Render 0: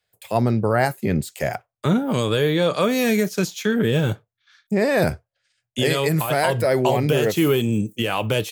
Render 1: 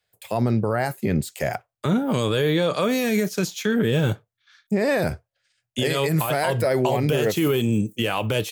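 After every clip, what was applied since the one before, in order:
brickwall limiter −12 dBFS, peak gain reduction 6 dB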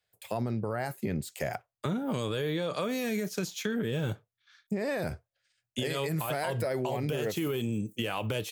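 downward compressor, threshold −22 dBFS, peak gain reduction 6 dB
level −5.5 dB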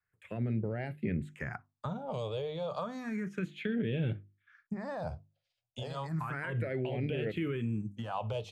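low-pass filter 2,900 Hz 12 dB per octave
mains-hum notches 50/100/150/200/250/300/350 Hz
all-pass phaser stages 4, 0.32 Hz, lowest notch 270–1,100 Hz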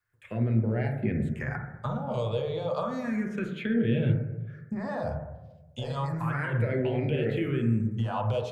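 hum removal 147 Hz, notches 15
on a send at −1 dB: Butterworth low-pass 2,100 Hz 48 dB per octave + convolution reverb RT60 1.1 s, pre-delay 8 ms
on the sum: level +3.5 dB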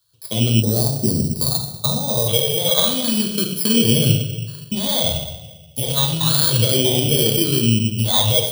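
samples in bit-reversed order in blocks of 16 samples
gain on a spectral selection 0:00.62–0:02.28, 1,300–3,600 Hz −26 dB
high shelf with overshoot 2,600 Hz +9 dB, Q 3
level +8.5 dB

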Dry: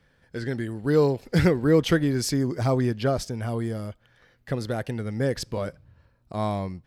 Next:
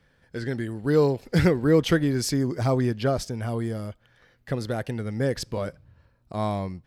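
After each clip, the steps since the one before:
no processing that can be heard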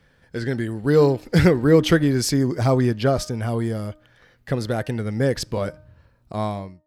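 fade-out on the ending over 0.58 s
hum removal 306.9 Hz, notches 6
level +4.5 dB

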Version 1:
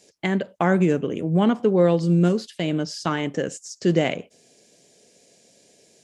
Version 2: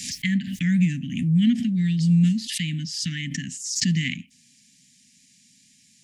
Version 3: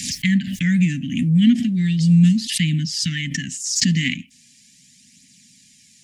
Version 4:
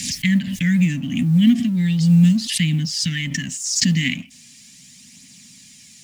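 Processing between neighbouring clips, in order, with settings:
Chebyshev band-stop filter 260–1,800 Hz, order 5; background raised ahead of every attack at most 55 dB per second; level +1.5 dB
phase shifter 0.38 Hz, delay 4 ms, feedback 33%; level +5 dB
mu-law and A-law mismatch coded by mu

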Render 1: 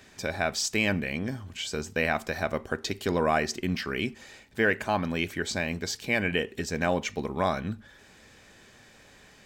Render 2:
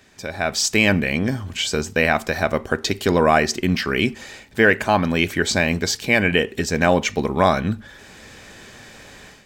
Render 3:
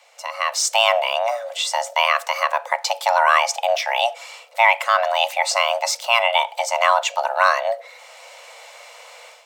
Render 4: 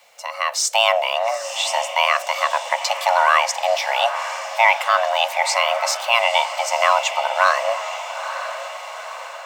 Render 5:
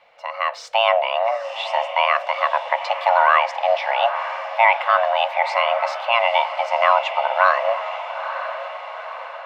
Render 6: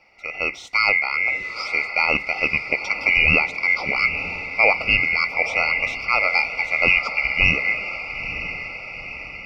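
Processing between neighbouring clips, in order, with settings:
automatic gain control gain up to 12 dB
frequency shifter +460 Hz
feedback delay with all-pass diffusion 909 ms, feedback 52%, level −10 dB; bit-depth reduction 10 bits, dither none
high-frequency loss of the air 380 metres; level +2.5 dB
band-splitting scrambler in four parts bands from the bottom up 2143; level −1.5 dB

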